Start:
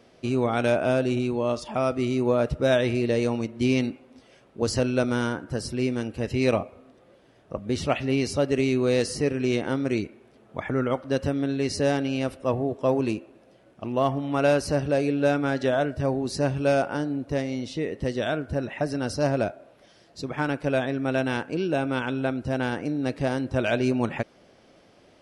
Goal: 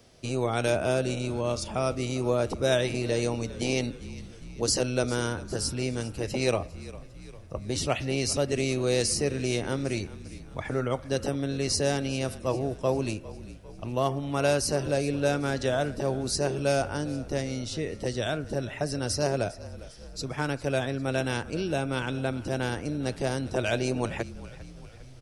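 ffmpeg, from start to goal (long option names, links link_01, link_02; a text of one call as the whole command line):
ffmpeg -i in.wav -filter_complex "[0:a]asplit=6[link_01][link_02][link_03][link_04][link_05][link_06];[link_02]adelay=401,afreqshift=-42,volume=-18dB[link_07];[link_03]adelay=802,afreqshift=-84,volume=-23dB[link_08];[link_04]adelay=1203,afreqshift=-126,volume=-28.1dB[link_09];[link_05]adelay=1604,afreqshift=-168,volume=-33.1dB[link_10];[link_06]adelay=2005,afreqshift=-210,volume=-38.1dB[link_11];[link_01][link_07][link_08][link_09][link_10][link_11]amix=inputs=6:normalize=0,acrossover=split=130|4100[link_12][link_13][link_14];[link_12]aeval=exprs='0.1*sin(PI/2*7.08*val(0)/0.1)':channel_layout=same[link_15];[link_15][link_13][link_14]amix=inputs=3:normalize=0,bass=frequency=250:gain=-10,treble=frequency=4000:gain=12,volume=-3.5dB" out.wav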